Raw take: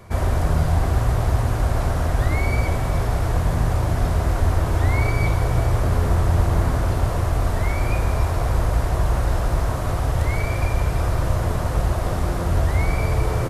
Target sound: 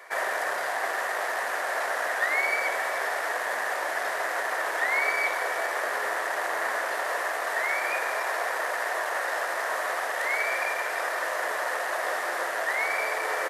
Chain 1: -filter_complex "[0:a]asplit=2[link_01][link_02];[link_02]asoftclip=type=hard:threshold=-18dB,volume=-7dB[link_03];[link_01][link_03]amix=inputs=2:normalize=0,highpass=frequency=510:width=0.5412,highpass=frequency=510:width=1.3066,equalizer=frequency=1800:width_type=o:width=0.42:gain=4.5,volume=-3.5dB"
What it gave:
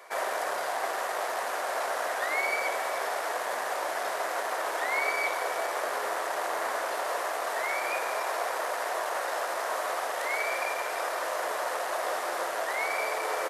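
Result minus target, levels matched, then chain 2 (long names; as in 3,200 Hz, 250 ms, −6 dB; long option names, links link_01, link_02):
2,000 Hz band −3.0 dB
-filter_complex "[0:a]asplit=2[link_01][link_02];[link_02]asoftclip=type=hard:threshold=-18dB,volume=-7dB[link_03];[link_01][link_03]amix=inputs=2:normalize=0,highpass=frequency=510:width=0.5412,highpass=frequency=510:width=1.3066,equalizer=frequency=1800:width_type=o:width=0.42:gain=14,volume=-3.5dB"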